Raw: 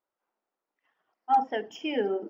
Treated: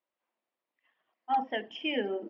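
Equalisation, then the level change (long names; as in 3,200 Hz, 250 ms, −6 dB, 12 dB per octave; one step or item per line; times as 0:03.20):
loudspeaker in its box 180–3,600 Hz, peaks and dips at 180 Hz −7 dB, 290 Hz −5 dB, 420 Hz −9 dB, 820 Hz −6 dB, 1,400 Hz −9 dB
parametric band 760 Hz −4.5 dB 2.5 octaves
+5.5 dB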